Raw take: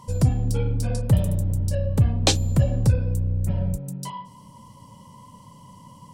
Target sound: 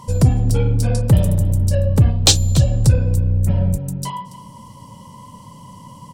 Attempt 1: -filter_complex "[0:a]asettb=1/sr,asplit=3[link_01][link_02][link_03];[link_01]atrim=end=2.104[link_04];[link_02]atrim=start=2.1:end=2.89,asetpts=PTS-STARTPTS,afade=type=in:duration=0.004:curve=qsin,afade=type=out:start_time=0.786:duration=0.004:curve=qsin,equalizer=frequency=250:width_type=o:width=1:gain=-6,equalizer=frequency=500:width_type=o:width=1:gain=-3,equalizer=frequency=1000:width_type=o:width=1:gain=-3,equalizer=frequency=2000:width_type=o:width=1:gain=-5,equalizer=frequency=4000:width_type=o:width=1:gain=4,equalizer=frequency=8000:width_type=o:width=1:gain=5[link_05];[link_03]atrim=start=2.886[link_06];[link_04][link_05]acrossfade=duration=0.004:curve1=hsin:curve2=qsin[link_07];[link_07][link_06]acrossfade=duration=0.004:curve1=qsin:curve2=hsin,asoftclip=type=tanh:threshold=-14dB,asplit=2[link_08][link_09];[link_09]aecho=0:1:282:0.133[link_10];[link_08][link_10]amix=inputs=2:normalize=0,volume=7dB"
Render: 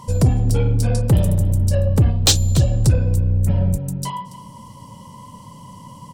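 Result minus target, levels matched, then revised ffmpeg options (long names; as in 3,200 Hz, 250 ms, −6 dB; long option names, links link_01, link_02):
soft clipping: distortion +8 dB
-filter_complex "[0:a]asettb=1/sr,asplit=3[link_01][link_02][link_03];[link_01]atrim=end=2.104[link_04];[link_02]atrim=start=2.1:end=2.89,asetpts=PTS-STARTPTS,afade=type=in:duration=0.004:curve=qsin,afade=type=out:start_time=0.786:duration=0.004:curve=qsin,equalizer=frequency=250:width_type=o:width=1:gain=-6,equalizer=frequency=500:width_type=o:width=1:gain=-3,equalizer=frequency=1000:width_type=o:width=1:gain=-3,equalizer=frequency=2000:width_type=o:width=1:gain=-5,equalizer=frequency=4000:width_type=o:width=1:gain=4,equalizer=frequency=8000:width_type=o:width=1:gain=5[link_05];[link_03]atrim=start=2.886[link_06];[link_04][link_05]acrossfade=duration=0.004:curve1=hsin:curve2=qsin[link_07];[link_07][link_06]acrossfade=duration=0.004:curve1=qsin:curve2=hsin,asoftclip=type=tanh:threshold=-8dB,asplit=2[link_08][link_09];[link_09]aecho=0:1:282:0.133[link_10];[link_08][link_10]amix=inputs=2:normalize=0,volume=7dB"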